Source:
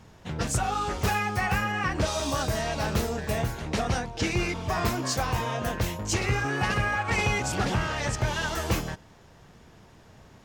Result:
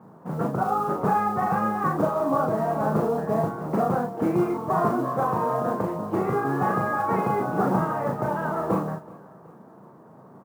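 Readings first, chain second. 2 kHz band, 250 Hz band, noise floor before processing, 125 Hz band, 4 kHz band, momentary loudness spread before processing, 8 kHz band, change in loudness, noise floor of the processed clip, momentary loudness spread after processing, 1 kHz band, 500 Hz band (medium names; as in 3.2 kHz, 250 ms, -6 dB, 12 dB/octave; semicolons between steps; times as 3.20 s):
-6.5 dB, +6.0 dB, -53 dBFS, -1.5 dB, under -20 dB, 4 LU, under -15 dB, +3.0 dB, -49 dBFS, 4 LU, +6.0 dB, +6.5 dB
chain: Chebyshev band-pass 160–1200 Hz, order 3; modulation noise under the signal 30 dB; doubling 37 ms -3.5 dB; on a send: feedback delay 376 ms, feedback 42%, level -21 dB; on the sum: trim +5.5 dB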